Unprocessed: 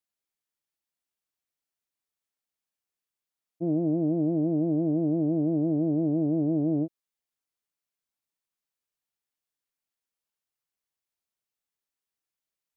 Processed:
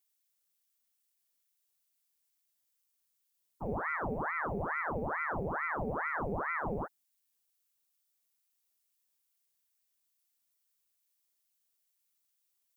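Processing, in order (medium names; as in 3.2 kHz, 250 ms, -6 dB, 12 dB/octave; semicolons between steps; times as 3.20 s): tilt EQ +4 dB/octave; ring modulator with a swept carrier 900 Hz, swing 90%, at 2.3 Hz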